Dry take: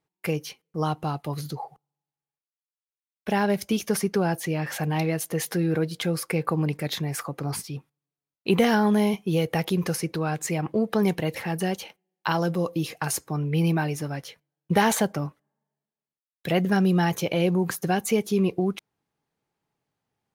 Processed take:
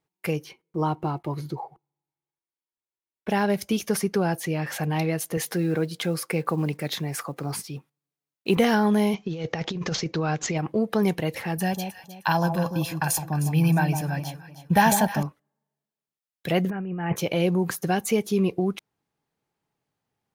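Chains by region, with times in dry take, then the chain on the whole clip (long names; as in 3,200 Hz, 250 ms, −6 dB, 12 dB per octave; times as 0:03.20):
0:00.44–0:03.29: one scale factor per block 7 bits + high-shelf EQ 3,000 Hz −11.5 dB + hollow resonant body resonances 350/950/2,200 Hz, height 12 dB, ringing for 85 ms
0:05.37–0:08.57: one scale factor per block 7 bits + high-pass filter 120 Hz
0:09.14–0:10.58: compressor whose output falls as the input rises −26 dBFS, ratio −0.5 + bad sample-rate conversion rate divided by 3×, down none, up filtered
0:11.57–0:15.23: parametric band 14,000 Hz +9 dB 0.24 octaves + comb filter 1.2 ms, depth 59% + delay that swaps between a low-pass and a high-pass 155 ms, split 980 Hz, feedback 51%, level −6.5 dB
0:16.70–0:17.16: Butterworth low-pass 2,800 Hz 72 dB per octave + compressor whose output falls as the input rises −26 dBFS, ratio −0.5
whole clip: no processing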